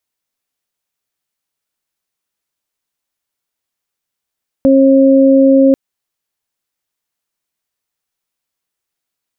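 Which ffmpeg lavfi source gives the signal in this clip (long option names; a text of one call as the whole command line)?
ffmpeg -f lavfi -i "aevalsrc='0.473*sin(2*PI*270*t)+0.355*sin(2*PI*540*t)':duration=1.09:sample_rate=44100" out.wav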